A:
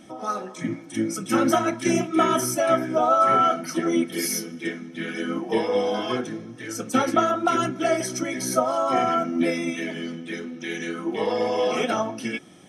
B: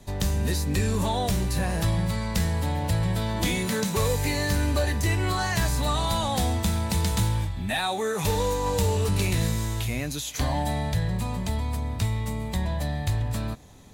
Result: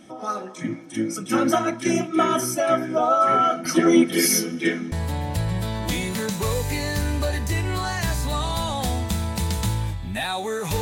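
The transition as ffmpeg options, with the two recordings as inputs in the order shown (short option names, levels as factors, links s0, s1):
-filter_complex "[0:a]asettb=1/sr,asplit=3[s0][s1][s2];[s0]atrim=end=3.654[s3];[s1]atrim=start=3.65:end=4.92,asetpts=PTS-STARTPTS,afade=t=in:d=0.004:c=qsin,afade=t=out:st=1.266:d=0.004:c=qsin,acontrast=84[s4];[s2]atrim=start=4.916[s5];[s3][s4]acrossfade=d=0.004:c1=hsin:c2=qsin[s6];[s6][s5]acrossfade=d=0.004:c1=qsin:c2=hsin,apad=whole_dur=10.81,atrim=end=10.81,atrim=end=4.922[s7];[1:a]atrim=start=2.458:end=8.35[s8];[s7][s8]acrossfade=d=0.004:c1=hsin:c2=hsin"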